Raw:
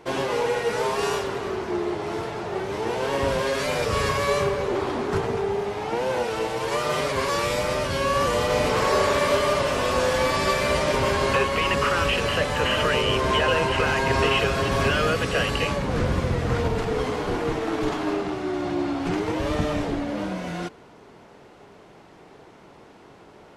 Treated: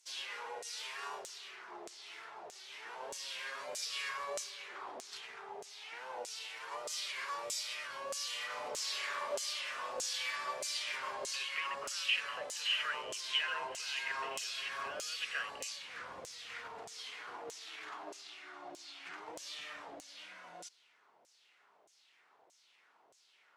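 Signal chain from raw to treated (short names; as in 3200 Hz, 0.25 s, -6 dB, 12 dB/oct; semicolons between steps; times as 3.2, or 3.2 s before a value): LFO band-pass saw down 1.6 Hz 550–7300 Hz; pre-emphasis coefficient 0.9; gain +4 dB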